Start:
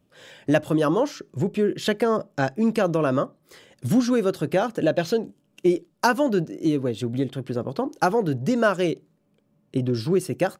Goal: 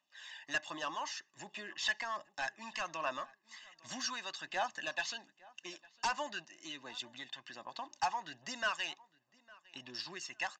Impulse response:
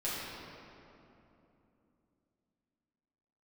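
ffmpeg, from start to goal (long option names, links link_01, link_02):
-filter_complex "[0:a]highpass=1300,aecho=1:1:1.1:0.83,aresample=16000,asoftclip=type=tanh:threshold=-23dB,aresample=44100,aphaser=in_gain=1:out_gain=1:delay=1.2:decay=0.39:speed=1.3:type=triangular,asplit=2[link_01][link_02];[link_02]adelay=856,lowpass=frequency=3400:poles=1,volume=-23dB,asplit=2[link_03][link_04];[link_04]adelay=856,lowpass=frequency=3400:poles=1,volume=0.24[link_05];[link_01][link_03][link_05]amix=inputs=3:normalize=0,volume=-5dB"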